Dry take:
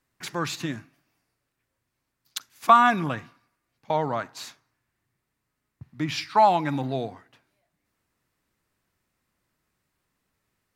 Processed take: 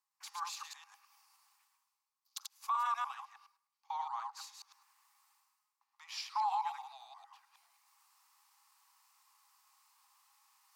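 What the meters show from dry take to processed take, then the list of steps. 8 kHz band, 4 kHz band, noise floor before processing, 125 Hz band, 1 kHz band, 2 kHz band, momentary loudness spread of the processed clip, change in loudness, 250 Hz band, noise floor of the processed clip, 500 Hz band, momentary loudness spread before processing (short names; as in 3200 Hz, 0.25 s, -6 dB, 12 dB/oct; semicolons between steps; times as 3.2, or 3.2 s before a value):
-8.5 dB, -11.5 dB, -81 dBFS, under -40 dB, -14.0 dB, -19.5 dB, 21 LU, -15.5 dB, under -40 dB, under -85 dBFS, -36.5 dB, 20 LU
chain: reverse delay 0.105 s, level -2.5 dB; rippled Chebyshev high-pass 790 Hz, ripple 6 dB; reverse; upward compressor, threshold -44 dBFS; reverse; band shelf 2300 Hz -9.5 dB; limiter -21 dBFS, peak gain reduction 13 dB; gain -5.5 dB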